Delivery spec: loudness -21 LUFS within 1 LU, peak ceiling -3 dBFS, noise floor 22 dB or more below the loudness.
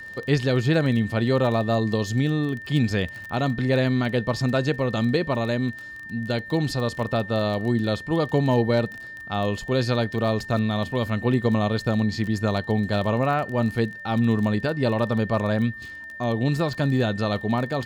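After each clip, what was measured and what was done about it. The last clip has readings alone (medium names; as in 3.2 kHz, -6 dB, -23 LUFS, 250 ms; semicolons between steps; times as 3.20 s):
tick rate 20 per s; steady tone 1.8 kHz; tone level -36 dBFS; loudness -24.0 LUFS; peak level -8.0 dBFS; loudness target -21.0 LUFS
-> de-click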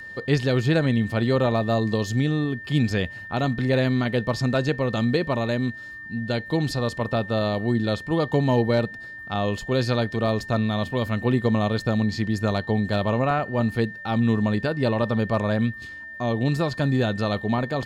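tick rate 0.28 per s; steady tone 1.8 kHz; tone level -36 dBFS
-> band-stop 1.8 kHz, Q 30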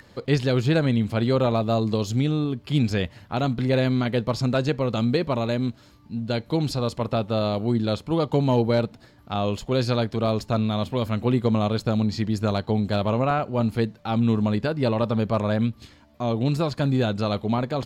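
steady tone not found; loudness -24.0 LUFS; peak level -8.0 dBFS; loudness target -21.0 LUFS
-> trim +3 dB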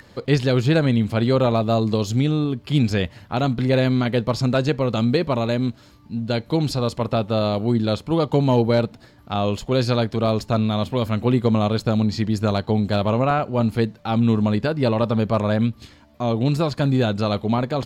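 loudness -21.0 LUFS; peak level -5.0 dBFS; noise floor -49 dBFS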